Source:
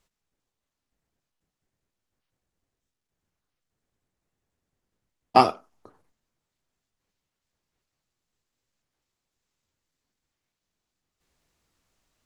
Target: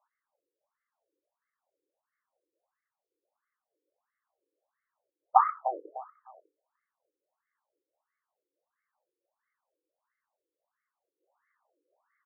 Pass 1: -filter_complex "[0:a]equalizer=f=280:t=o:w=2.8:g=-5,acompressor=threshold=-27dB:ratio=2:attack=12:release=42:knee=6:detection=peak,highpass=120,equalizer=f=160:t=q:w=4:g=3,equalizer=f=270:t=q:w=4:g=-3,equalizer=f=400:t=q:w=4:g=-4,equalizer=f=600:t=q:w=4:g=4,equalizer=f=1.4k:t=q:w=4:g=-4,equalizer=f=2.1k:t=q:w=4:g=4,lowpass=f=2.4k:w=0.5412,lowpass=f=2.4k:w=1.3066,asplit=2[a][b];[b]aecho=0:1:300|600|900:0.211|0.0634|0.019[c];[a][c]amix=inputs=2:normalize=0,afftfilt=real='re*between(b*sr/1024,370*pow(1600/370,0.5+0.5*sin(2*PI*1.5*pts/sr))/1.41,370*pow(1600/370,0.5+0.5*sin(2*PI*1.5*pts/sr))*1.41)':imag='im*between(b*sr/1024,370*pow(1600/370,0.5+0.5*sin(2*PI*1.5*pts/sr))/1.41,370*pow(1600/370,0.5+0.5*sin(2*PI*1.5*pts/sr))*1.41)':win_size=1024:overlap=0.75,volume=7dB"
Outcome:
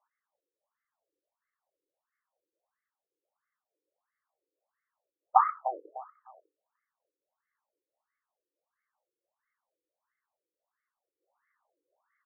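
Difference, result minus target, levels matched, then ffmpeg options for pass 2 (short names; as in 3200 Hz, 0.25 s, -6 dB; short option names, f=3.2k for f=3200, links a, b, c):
250 Hz band -3.5 dB
-filter_complex "[0:a]acompressor=threshold=-27dB:ratio=2:attack=12:release=42:knee=6:detection=peak,highpass=120,equalizer=f=160:t=q:w=4:g=3,equalizer=f=270:t=q:w=4:g=-3,equalizer=f=400:t=q:w=4:g=-4,equalizer=f=600:t=q:w=4:g=4,equalizer=f=1.4k:t=q:w=4:g=-4,equalizer=f=2.1k:t=q:w=4:g=4,lowpass=f=2.4k:w=0.5412,lowpass=f=2.4k:w=1.3066,asplit=2[a][b];[b]aecho=0:1:300|600|900:0.211|0.0634|0.019[c];[a][c]amix=inputs=2:normalize=0,afftfilt=real='re*between(b*sr/1024,370*pow(1600/370,0.5+0.5*sin(2*PI*1.5*pts/sr))/1.41,370*pow(1600/370,0.5+0.5*sin(2*PI*1.5*pts/sr))*1.41)':imag='im*between(b*sr/1024,370*pow(1600/370,0.5+0.5*sin(2*PI*1.5*pts/sr))/1.41,370*pow(1600/370,0.5+0.5*sin(2*PI*1.5*pts/sr))*1.41)':win_size=1024:overlap=0.75,volume=7dB"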